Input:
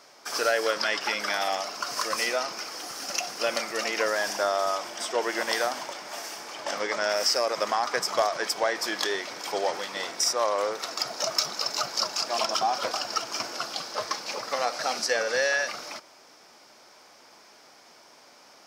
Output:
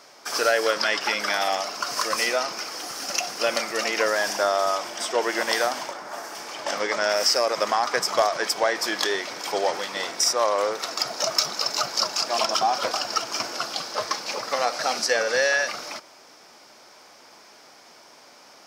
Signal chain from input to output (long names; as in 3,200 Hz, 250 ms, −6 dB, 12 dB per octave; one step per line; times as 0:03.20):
0:05.91–0:06.35: high shelf with overshoot 1,900 Hz −6.5 dB, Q 1.5
level +3.5 dB